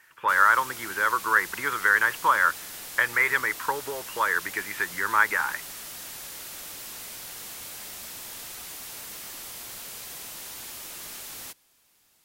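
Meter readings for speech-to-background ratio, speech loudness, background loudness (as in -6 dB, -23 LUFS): 13.0 dB, -24.0 LUFS, -37.0 LUFS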